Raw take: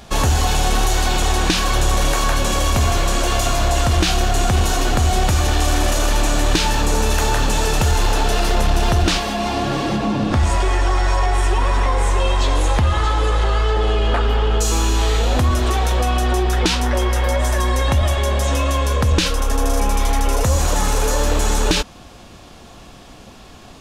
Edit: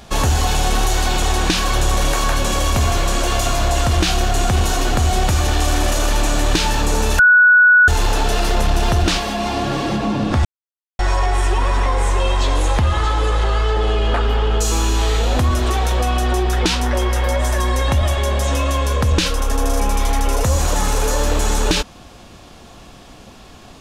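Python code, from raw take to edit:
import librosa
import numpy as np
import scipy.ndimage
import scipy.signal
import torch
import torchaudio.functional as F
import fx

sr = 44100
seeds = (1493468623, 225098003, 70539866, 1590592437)

y = fx.edit(x, sr, fx.bleep(start_s=7.19, length_s=0.69, hz=1470.0, db=-6.5),
    fx.silence(start_s=10.45, length_s=0.54), tone=tone)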